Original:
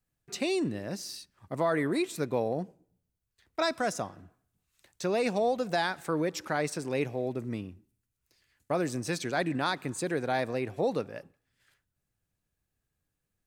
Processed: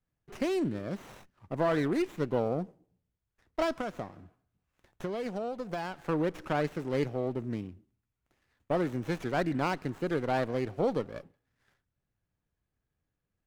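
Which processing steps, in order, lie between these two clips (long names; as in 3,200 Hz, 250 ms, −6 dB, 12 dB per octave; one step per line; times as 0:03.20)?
de-essing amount 85%
high-shelf EQ 4,500 Hz −6.5 dB
0:03.80–0:06.08: downward compressor 4 to 1, threshold −33 dBFS, peak gain reduction 9 dB
windowed peak hold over 9 samples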